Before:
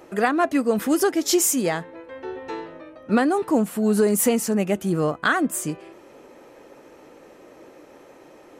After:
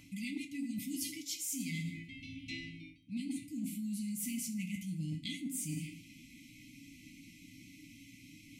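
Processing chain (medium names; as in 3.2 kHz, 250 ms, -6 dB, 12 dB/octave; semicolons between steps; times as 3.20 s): brick-wall FIR band-stop 300–2000 Hz; reverberation RT60 0.80 s, pre-delay 4 ms, DRR 1 dB; reverse; compression 16:1, threshold -36 dBFS, peak gain reduction 20.5 dB; reverse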